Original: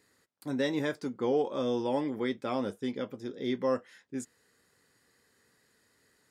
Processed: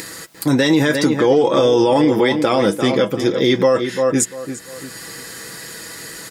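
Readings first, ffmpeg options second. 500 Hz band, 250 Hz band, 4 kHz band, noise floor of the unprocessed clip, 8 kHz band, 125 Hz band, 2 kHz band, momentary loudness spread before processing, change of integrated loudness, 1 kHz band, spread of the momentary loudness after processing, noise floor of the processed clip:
+17.0 dB, +16.5 dB, +20.5 dB, -70 dBFS, +27.5 dB, +19.5 dB, +19.0 dB, 12 LU, +17.0 dB, +16.5 dB, 17 LU, -37 dBFS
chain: -filter_complex "[0:a]highshelf=f=3.4k:g=6.5,aecho=1:1:6.1:0.5,asplit=2[a][b];[b]adelay=345,lowpass=f=3.2k:p=1,volume=-11dB,asplit=2[c][d];[d]adelay=345,lowpass=f=3.2k:p=1,volume=0.21,asplit=2[e][f];[f]adelay=345,lowpass=f=3.2k:p=1,volume=0.21[g];[a][c][e][g]amix=inputs=4:normalize=0,acompressor=mode=upward:threshold=-43dB:ratio=2.5,alimiter=level_in=25.5dB:limit=-1dB:release=50:level=0:latency=1,volume=-4.5dB"

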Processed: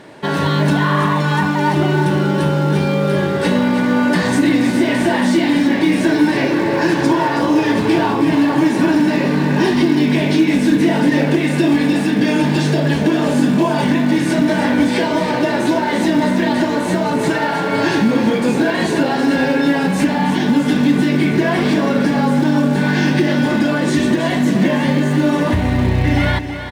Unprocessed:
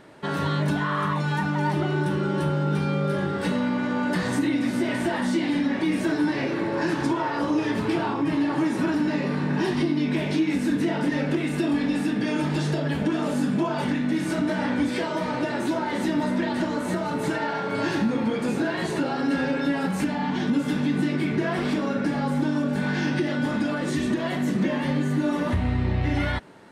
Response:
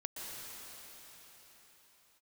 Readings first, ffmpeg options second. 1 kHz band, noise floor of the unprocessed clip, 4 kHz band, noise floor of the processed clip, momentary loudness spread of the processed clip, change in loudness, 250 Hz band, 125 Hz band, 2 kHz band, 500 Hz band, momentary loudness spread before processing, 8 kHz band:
+9.5 dB, -28 dBFS, +10.5 dB, -19 dBFS, 2 LU, +9.5 dB, +9.5 dB, +9.0 dB, +10.0 dB, +10.0 dB, 2 LU, +10.0 dB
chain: -af "highpass=f=93:p=1,acontrast=61,highshelf=f=4.4k:g=10,bandreject=f=1.3k:w=7,acrusher=bits=5:mode=log:mix=0:aa=0.000001,aemphasis=mode=reproduction:type=50kf,aecho=1:1:323:0.335,volume=3.5dB"

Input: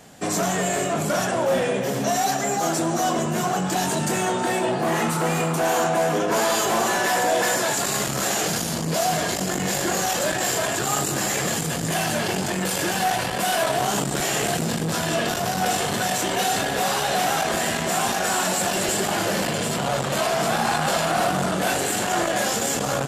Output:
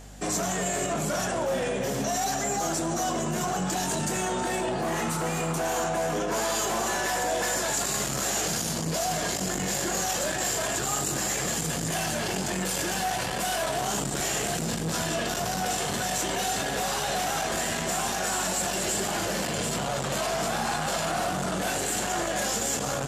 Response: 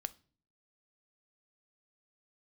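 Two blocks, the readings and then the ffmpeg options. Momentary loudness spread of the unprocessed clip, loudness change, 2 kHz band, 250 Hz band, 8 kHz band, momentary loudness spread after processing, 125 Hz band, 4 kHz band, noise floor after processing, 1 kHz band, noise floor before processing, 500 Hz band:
3 LU, -5.0 dB, -6.0 dB, -5.5 dB, -2.5 dB, 2 LU, -5.0 dB, -4.5 dB, -30 dBFS, -6.0 dB, -26 dBFS, -6.0 dB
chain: -af "alimiter=limit=-18dB:level=0:latency=1:release=14,aeval=exprs='val(0)+0.00794*(sin(2*PI*50*n/s)+sin(2*PI*2*50*n/s)/2+sin(2*PI*3*50*n/s)/3+sin(2*PI*4*50*n/s)/4+sin(2*PI*5*50*n/s)/5)':c=same,equalizer=f=6.6k:t=o:w=0.86:g=4,volume=-3dB"

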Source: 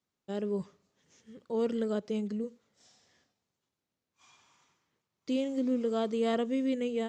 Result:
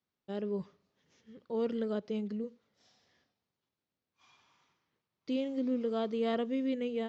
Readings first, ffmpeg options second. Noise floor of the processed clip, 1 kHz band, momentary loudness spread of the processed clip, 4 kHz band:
under -85 dBFS, -2.5 dB, 9 LU, -2.5 dB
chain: -af "lowpass=f=5.3k:w=0.5412,lowpass=f=5.3k:w=1.3066,volume=-2.5dB"

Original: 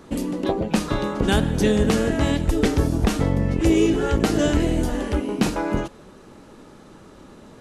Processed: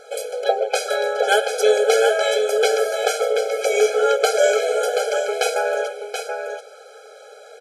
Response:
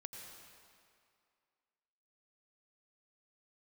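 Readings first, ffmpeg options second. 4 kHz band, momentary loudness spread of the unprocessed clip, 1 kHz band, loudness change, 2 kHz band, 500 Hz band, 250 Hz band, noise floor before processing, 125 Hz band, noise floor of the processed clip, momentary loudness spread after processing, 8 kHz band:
+5.5 dB, 7 LU, +6.5 dB, +2.0 dB, +7.0 dB, +7.5 dB, under -20 dB, -47 dBFS, under -40 dB, -44 dBFS, 11 LU, +6.5 dB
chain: -af "aecho=1:1:730:0.473,afftfilt=real='re*eq(mod(floor(b*sr/1024/430),2),1)':imag='im*eq(mod(floor(b*sr/1024/430),2),1)':win_size=1024:overlap=0.75,volume=8.5dB"

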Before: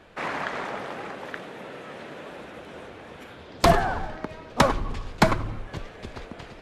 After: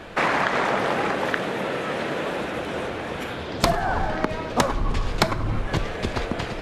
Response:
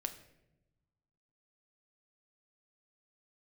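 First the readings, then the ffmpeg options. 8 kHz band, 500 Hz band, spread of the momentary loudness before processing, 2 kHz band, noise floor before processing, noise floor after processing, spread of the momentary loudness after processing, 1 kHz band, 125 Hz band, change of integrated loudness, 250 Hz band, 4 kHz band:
+3.0 dB, +3.5 dB, 19 LU, +5.5 dB, -45 dBFS, -32 dBFS, 7 LU, +3.0 dB, +3.0 dB, +1.5 dB, +3.5 dB, +4.5 dB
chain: -filter_complex "[0:a]acompressor=threshold=-30dB:ratio=20,asplit=2[a][b];[1:a]atrim=start_sample=2205[c];[b][c]afir=irnorm=-1:irlink=0,volume=-1.5dB[d];[a][d]amix=inputs=2:normalize=0,volume=8dB"

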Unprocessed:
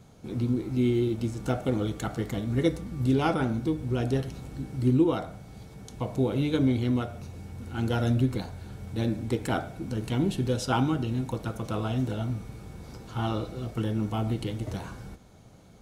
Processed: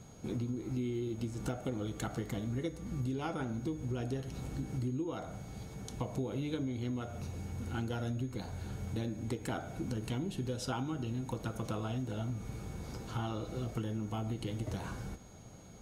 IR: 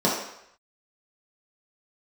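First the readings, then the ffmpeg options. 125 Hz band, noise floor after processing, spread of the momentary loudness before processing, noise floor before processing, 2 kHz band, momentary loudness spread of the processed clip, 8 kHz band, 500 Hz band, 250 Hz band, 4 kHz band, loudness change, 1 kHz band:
-8.5 dB, -51 dBFS, 16 LU, -51 dBFS, -8.5 dB, 6 LU, -3.5 dB, -10.0 dB, -10.0 dB, -8.0 dB, -10.0 dB, -9.5 dB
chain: -af "acompressor=threshold=-33dB:ratio=10,aeval=exprs='val(0)+0.000708*sin(2*PI*6600*n/s)':c=same"

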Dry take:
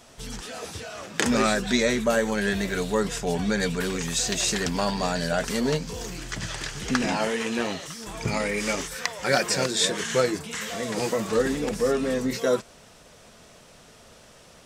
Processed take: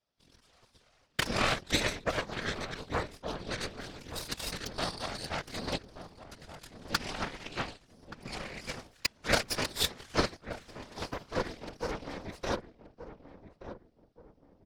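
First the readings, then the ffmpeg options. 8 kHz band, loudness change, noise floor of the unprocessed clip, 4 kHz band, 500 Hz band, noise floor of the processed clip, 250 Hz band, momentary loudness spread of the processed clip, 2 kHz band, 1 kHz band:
-12.5 dB, -9.0 dB, -52 dBFS, -6.0 dB, -12.5 dB, -67 dBFS, -13.5 dB, 20 LU, -7.5 dB, -7.0 dB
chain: -filter_complex "[0:a]highshelf=f=6k:t=q:w=3:g=-7,aeval=exprs='0.75*(cos(1*acos(clip(val(0)/0.75,-1,1)))-cos(1*PI/2))+0.168*(cos(4*acos(clip(val(0)/0.75,-1,1)))-cos(4*PI/2))+0.15*(cos(5*acos(clip(val(0)/0.75,-1,1)))-cos(5*PI/2))+0.211*(cos(7*acos(clip(val(0)/0.75,-1,1)))-cos(7*PI/2))':c=same,afftfilt=real='hypot(re,im)*cos(2*PI*random(0))':imag='hypot(re,im)*sin(2*PI*random(1))':win_size=512:overlap=0.75,asplit=2[a][b];[b]adelay=1176,lowpass=f=860:p=1,volume=-10dB,asplit=2[c][d];[d]adelay=1176,lowpass=f=860:p=1,volume=0.4,asplit=2[e][f];[f]adelay=1176,lowpass=f=860:p=1,volume=0.4,asplit=2[g][h];[h]adelay=1176,lowpass=f=860:p=1,volume=0.4[i];[a][c][e][g][i]amix=inputs=5:normalize=0"

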